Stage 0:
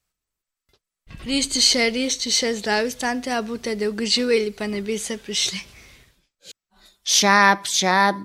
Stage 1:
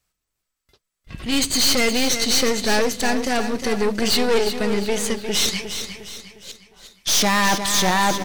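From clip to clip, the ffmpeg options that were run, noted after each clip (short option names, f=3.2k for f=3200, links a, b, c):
-filter_complex "[0:a]aeval=exprs='(tanh(14.1*val(0)+0.7)-tanh(0.7))/14.1':c=same,asplit=2[a][b];[b]aecho=0:1:356|712|1068|1424|1780:0.355|0.153|0.0656|0.0282|0.0121[c];[a][c]amix=inputs=2:normalize=0,volume=7.5dB"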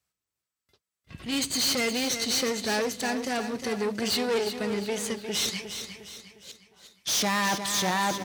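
-af "highpass=f=65:w=0.5412,highpass=f=65:w=1.3066,volume=-7.5dB"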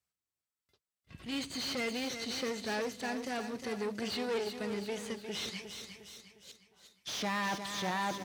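-filter_complex "[0:a]acrossover=split=4200[a][b];[b]acompressor=threshold=-40dB:ratio=4:attack=1:release=60[c];[a][c]amix=inputs=2:normalize=0,volume=-7.5dB"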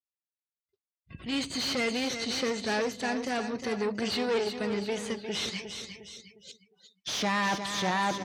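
-af "afftdn=nr=26:nf=-59,volume=6dB"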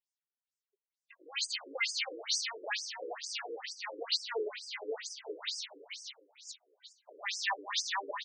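-filter_complex "[0:a]tiltshelf=f=1.2k:g=-5.5,asplit=6[a][b][c][d][e][f];[b]adelay=207,afreqshift=93,volume=-11dB[g];[c]adelay=414,afreqshift=186,volume=-17dB[h];[d]adelay=621,afreqshift=279,volume=-23dB[i];[e]adelay=828,afreqshift=372,volume=-29.1dB[j];[f]adelay=1035,afreqshift=465,volume=-35.1dB[k];[a][g][h][i][j][k]amix=inputs=6:normalize=0,afftfilt=real='re*between(b*sr/1024,370*pow(6900/370,0.5+0.5*sin(2*PI*2.2*pts/sr))/1.41,370*pow(6900/370,0.5+0.5*sin(2*PI*2.2*pts/sr))*1.41)':imag='im*between(b*sr/1024,370*pow(6900/370,0.5+0.5*sin(2*PI*2.2*pts/sr))/1.41,370*pow(6900/370,0.5+0.5*sin(2*PI*2.2*pts/sr))*1.41)':win_size=1024:overlap=0.75"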